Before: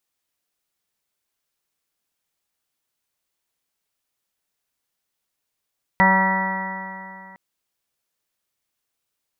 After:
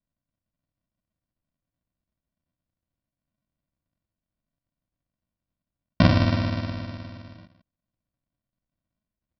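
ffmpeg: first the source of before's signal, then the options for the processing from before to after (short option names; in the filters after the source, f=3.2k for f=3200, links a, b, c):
-f lavfi -i "aevalsrc='0.126*pow(10,-3*t/2.68)*sin(2*PI*189.06*t)+0.0178*pow(10,-3*t/2.68)*sin(2*PI*378.49*t)+0.0596*pow(10,-3*t/2.68)*sin(2*PI*568.66*t)+0.0596*pow(10,-3*t/2.68)*sin(2*PI*759.92*t)+0.178*pow(10,-3*t/2.68)*sin(2*PI*952.65*t)+0.0316*pow(10,-3*t/2.68)*sin(2*PI*1147.19*t)+0.0501*pow(10,-3*t/2.68)*sin(2*PI*1343.9*t)+0.0266*pow(10,-3*t/2.68)*sin(2*PI*1543.13*t)+0.0316*pow(10,-3*t/2.68)*sin(2*PI*1745.2*t)+0.168*pow(10,-3*t/2.68)*sin(2*PI*1950.46*t)':d=1.36:s=44100"
-af "lowpass=f=3k:w=0.5412,lowpass=f=3k:w=1.3066,aresample=11025,acrusher=samples=26:mix=1:aa=0.000001,aresample=44100,aecho=1:1:92|114|255:0.562|0.224|0.141"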